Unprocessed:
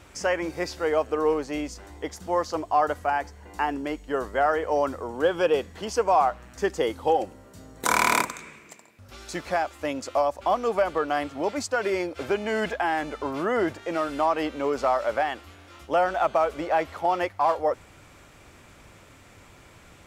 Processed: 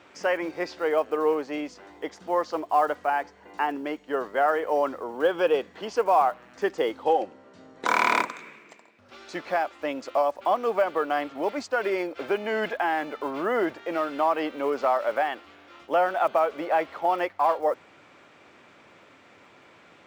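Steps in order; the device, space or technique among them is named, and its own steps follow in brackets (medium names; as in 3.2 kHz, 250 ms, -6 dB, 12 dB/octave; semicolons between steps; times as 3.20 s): early digital voice recorder (band-pass 240–3900 Hz; block-companded coder 7-bit); 7.03–7.88 s: low-pass 7.3 kHz 12 dB/octave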